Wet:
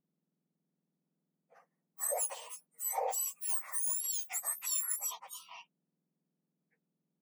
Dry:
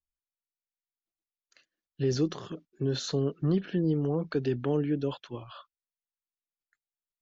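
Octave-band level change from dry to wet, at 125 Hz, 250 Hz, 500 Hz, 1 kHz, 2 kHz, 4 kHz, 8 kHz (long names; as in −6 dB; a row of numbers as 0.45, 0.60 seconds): below −40 dB, below −40 dB, −14.0 dB, +3.5 dB, −4.0 dB, −7.5 dB, can't be measured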